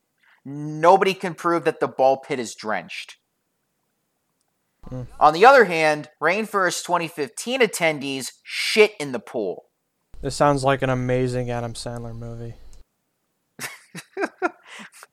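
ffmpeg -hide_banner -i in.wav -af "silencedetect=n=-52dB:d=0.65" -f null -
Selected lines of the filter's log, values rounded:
silence_start: 3.16
silence_end: 4.41 | silence_duration: 1.26
silence_start: 12.81
silence_end: 13.59 | silence_duration: 0.78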